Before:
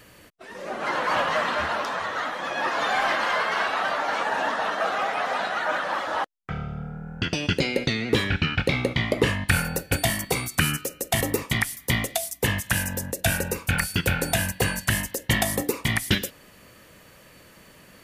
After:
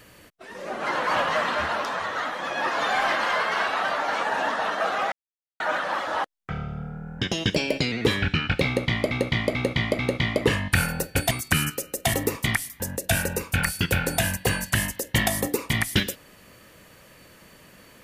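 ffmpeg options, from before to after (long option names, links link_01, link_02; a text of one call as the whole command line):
ffmpeg -i in.wav -filter_complex "[0:a]asplit=10[link_01][link_02][link_03][link_04][link_05][link_06][link_07][link_08][link_09][link_10];[link_01]atrim=end=5.12,asetpts=PTS-STARTPTS,afade=type=out:start_time=5.116:duration=0.004:curve=hsin[link_11];[link_02]atrim=start=5.12:end=5.6,asetpts=PTS-STARTPTS,volume=0[link_12];[link_03]atrim=start=5.6:end=7.194,asetpts=PTS-STARTPTS,afade=type=in:duration=0.004:curve=hsin[link_13];[link_04]atrim=start=7.19:end=8,asetpts=PTS-STARTPTS,asetrate=48951,aresample=44100,atrim=end_sample=32181,asetpts=PTS-STARTPTS[link_14];[link_05]atrim=start=7.996:end=9.192[link_15];[link_06]atrim=start=8.748:end=9.192[link_16];[link_07]atrim=start=8.748:end=9.192[link_17];[link_08]atrim=start=8.748:end=10.072[link_18];[link_09]atrim=start=10.378:end=11.872[link_19];[link_10]atrim=start=12.948[link_20];[link_11][link_12][link_13]concat=n=3:v=0:a=1[link_21];[link_21][link_14]acrossfade=duration=0.004:curve1=hsin:curve2=hsin[link_22];[link_22][link_15]acrossfade=duration=0.004:curve1=hsin:curve2=hsin[link_23];[link_23][link_16]acrossfade=duration=0.004:curve1=hsin:curve2=hsin[link_24];[link_24][link_17]acrossfade=duration=0.004:curve1=hsin:curve2=hsin[link_25];[link_25][link_18]acrossfade=duration=0.004:curve1=hsin:curve2=hsin[link_26];[link_26][link_19]acrossfade=duration=0.004:curve1=hsin:curve2=hsin[link_27];[link_27][link_20]acrossfade=duration=0.004:curve1=hsin:curve2=hsin" out.wav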